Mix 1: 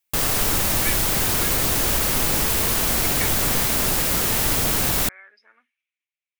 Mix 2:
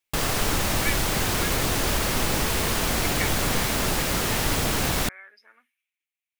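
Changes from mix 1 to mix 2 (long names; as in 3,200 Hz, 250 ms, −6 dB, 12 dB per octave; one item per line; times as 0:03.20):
speech: remove high-frequency loss of the air 110 metres
master: add high-shelf EQ 8,800 Hz −11.5 dB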